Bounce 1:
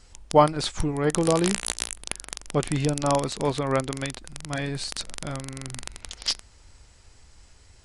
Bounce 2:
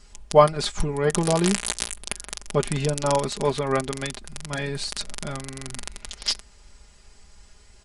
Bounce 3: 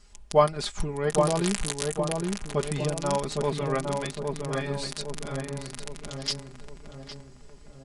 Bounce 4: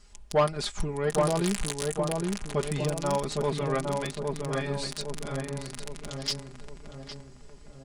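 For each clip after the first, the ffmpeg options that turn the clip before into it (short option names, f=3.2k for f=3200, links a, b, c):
-af "aecho=1:1:4.9:0.65"
-filter_complex "[0:a]asplit=2[a][b];[b]adelay=810,lowpass=f=1.2k:p=1,volume=-3dB,asplit=2[c][d];[d]adelay=810,lowpass=f=1.2k:p=1,volume=0.52,asplit=2[e][f];[f]adelay=810,lowpass=f=1.2k:p=1,volume=0.52,asplit=2[g][h];[h]adelay=810,lowpass=f=1.2k:p=1,volume=0.52,asplit=2[i][j];[j]adelay=810,lowpass=f=1.2k:p=1,volume=0.52,asplit=2[k][l];[l]adelay=810,lowpass=f=1.2k:p=1,volume=0.52,asplit=2[m][n];[n]adelay=810,lowpass=f=1.2k:p=1,volume=0.52[o];[a][c][e][g][i][k][m][o]amix=inputs=8:normalize=0,volume=-5dB"
-af "asoftclip=type=tanh:threshold=-16dB"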